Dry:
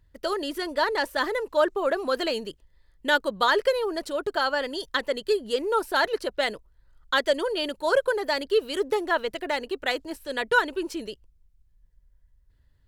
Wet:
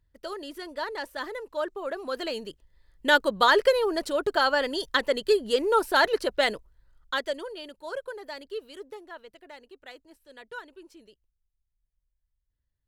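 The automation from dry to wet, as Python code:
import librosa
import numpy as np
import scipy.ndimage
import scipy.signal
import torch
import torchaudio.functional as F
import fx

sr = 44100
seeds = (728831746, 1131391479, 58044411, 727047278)

y = fx.gain(x, sr, db=fx.line((1.84, -8.5), (3.12, 2.0), (6.54, 2.0), (7.16, -5.5), (7.64, -13.0), (8.56, -13.0), (9.12, -19.0)))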